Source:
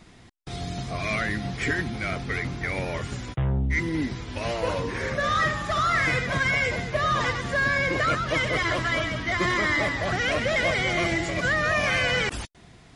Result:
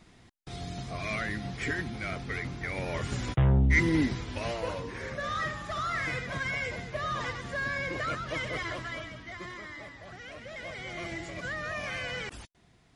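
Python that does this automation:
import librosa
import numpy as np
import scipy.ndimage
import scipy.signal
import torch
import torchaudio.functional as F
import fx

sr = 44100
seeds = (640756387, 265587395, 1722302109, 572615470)

y = fx.gain(x, sr, db=fx.line((2.74, -6.0), (3.28, 2.0), (3.93, 2.0), (4.83, -9.0), (8.56, -9.0), (9.72, -20.0), (10.36, -20.0), (11.17, -12.0)))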